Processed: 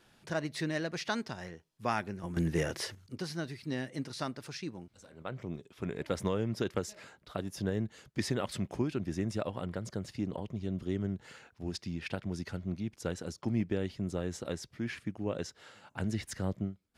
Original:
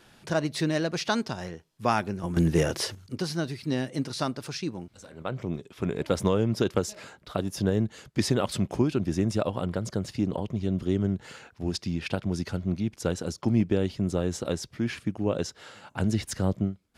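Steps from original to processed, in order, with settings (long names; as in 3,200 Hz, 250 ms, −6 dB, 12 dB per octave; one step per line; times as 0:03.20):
dynamic equaliser 1,900 Hz, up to +6 dB, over −51 dBFS, Q 2.4
level −8 dB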